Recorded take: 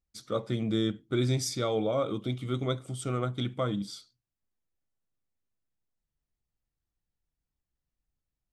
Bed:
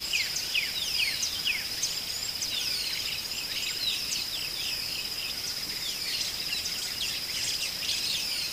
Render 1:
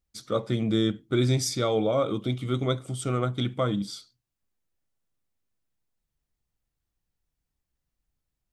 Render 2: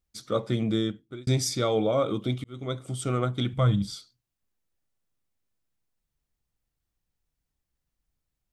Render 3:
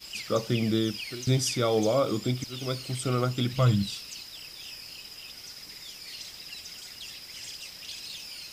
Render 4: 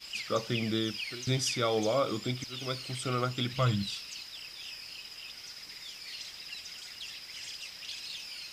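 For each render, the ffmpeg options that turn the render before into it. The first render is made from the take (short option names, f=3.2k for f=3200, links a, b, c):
-af "volume=4dB"
-filter_complex "[0:a]asplit=3[a][b][c];[a]afade=t=out:st=3.52:d=0.02[d];[b]asubboost=boost=11.5:cutoff=95,afade=t=in:st=3.52:d=0.02,afade=t=out:st=3.94:d=0.02[e];[c]afade=t=in:st=3.94:d=0.02[f];[d][e][f]amix=inputs=3:normalize=0,asplit=3[g][h][i];[g]atrim=end=1.27,asetpts=PTS-STARTPTS,afade=t=out:st=0.64:d=0.63[j];[h]atrim=start=1.27:end=2.44,asetpts=PTS-STARTPTS,afade=t=in:d=0.004:c=hsin,afade=t=out:st=1.166:d=0.004:c=hsin[k];[i]atrim=start=2.44,asetpts=PTS-STARTPTS,afade=t=in:d=0.49[l];[j][k][l]concat=n=3:v=0:a=1"
-filter_complex "[1:a]volume=-10.5dB[a];[0:a][a]amix=inputs=2:normalize=0"
-af "lowpass=f=2.2k:p=1,tiltshelf=f=1.1k:g=-6.5"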